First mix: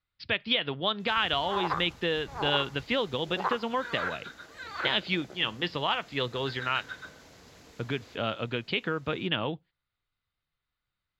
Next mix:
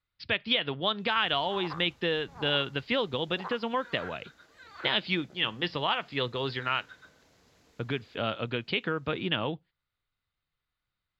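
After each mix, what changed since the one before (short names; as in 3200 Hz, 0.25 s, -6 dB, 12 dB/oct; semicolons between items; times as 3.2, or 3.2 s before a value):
background -10.0 dB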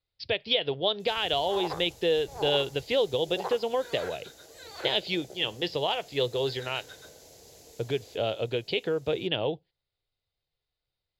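background +7.5 dB; master: add EQ curve 130 Hz 0 dB, 230 Hz -7 dB, 430 Hz +7 dB, 770 Hz +3 dB, 1200 Hz -11 dB, 10000 Hz +14 dB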